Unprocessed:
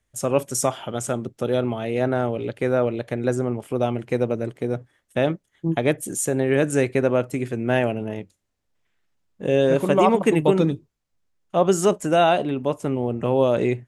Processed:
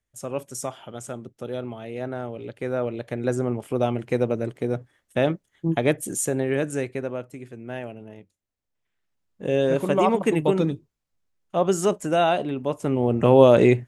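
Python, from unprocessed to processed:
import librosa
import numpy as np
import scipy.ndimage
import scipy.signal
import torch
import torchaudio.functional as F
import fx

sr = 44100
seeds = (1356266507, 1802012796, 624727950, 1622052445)

y = fx.gain(x, sr, db=fx.line((2.28, -9.0), (3.51, -0.5), (6.17, -0.5), (7.37, -13.0), (8.19, -13.0), (9.47, -3.0), (12.66, -3.0), (13.23, 5.5)))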